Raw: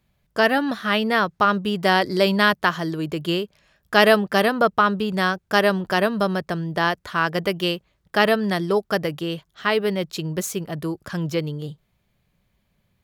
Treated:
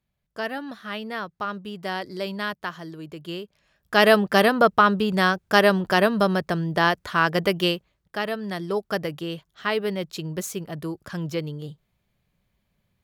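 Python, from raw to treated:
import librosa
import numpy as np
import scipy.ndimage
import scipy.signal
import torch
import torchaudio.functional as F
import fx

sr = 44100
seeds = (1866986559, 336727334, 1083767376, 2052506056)

y = fx.gain(x, sr, db=fx.line((3.22, -11.5), (4.25, 1.0), (7.66, 1.0), (8.24, -10.5), (8.88, -4.0)))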